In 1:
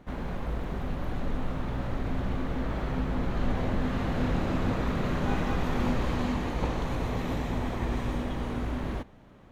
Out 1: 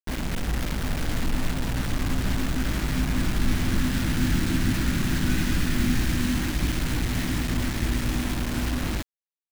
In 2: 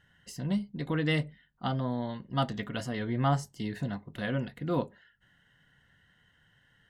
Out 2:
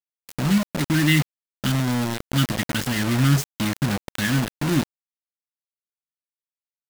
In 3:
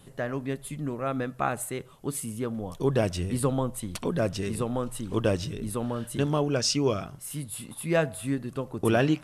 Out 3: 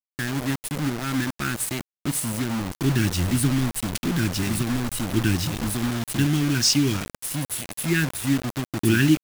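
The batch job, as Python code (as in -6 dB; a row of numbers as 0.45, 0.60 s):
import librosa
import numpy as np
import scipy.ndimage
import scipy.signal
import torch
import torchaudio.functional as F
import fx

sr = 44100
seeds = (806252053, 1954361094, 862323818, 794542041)

y = scipy.signal.sosfilt(scipy.signal.ellip(3, 1.0, 40, [330.0, 1500.0], 'bandstop', fs=sr, output='sos'), x)
y = fx.quant_dither(y, sr, seeds[0], bits=6, dither='none')
y = y * 10.0 ** (-24 / 20.0) / np.sqrt(np.mean(np.square(y)))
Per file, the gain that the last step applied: +5.5, +11.0, +7.0 dB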